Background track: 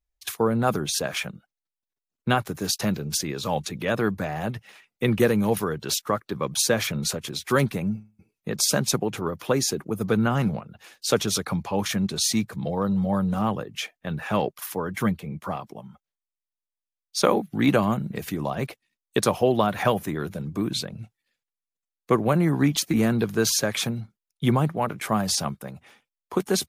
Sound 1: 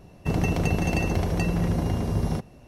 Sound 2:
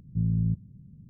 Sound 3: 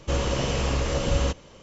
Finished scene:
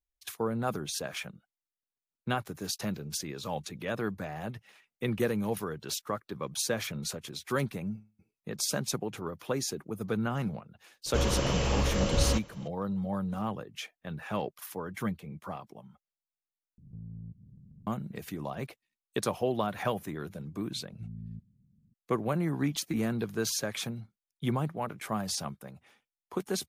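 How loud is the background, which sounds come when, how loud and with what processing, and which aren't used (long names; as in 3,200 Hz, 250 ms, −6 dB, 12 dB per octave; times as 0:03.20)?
background track −9 dB
0:11.06: mix in 3 −3 dB
0:16.78: overwrite with 2 −4 dB + downward compressor 2.5 to 1, threshold −44 dBFS
0:20.85: mix in 2 −17.5 dB + parametric band 220 Hz +6 dB 0.24 octaves
not used: 1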